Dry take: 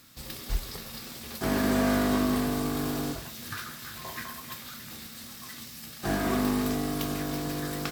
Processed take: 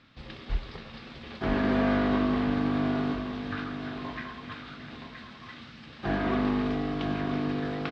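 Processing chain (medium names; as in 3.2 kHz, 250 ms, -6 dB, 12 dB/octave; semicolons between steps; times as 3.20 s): low-pass 3.5 kHz 24 dB/octave; feedback delay 971 ms, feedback 28%, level -8.5 dB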